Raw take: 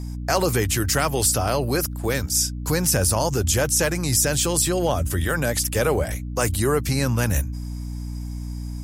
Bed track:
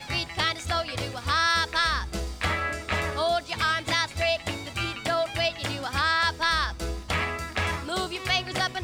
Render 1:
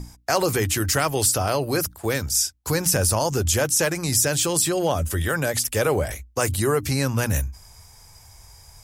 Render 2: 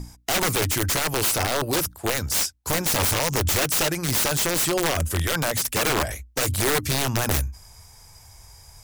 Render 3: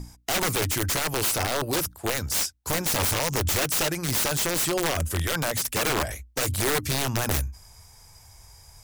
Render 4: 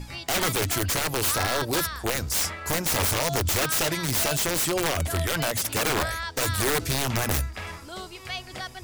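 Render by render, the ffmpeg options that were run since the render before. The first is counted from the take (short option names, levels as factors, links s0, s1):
-af "bandreject=f=60:t=h:w=6,bandreject=f=120:t=h:w=6,bandreject=f=180:t=h:w=6,bandreject=f=240:t=h:w=6,bandreject=f=300:t=h:w=6"
-af "aeval=exprs='(mod(6.31*val(0)+1,2)-1)/6.31':c=same"
-af "volume=0.75"
-filter_complex "[1:a]volume=0.355[s0];[0:a][s0]amix=inputs=2:normalize=0"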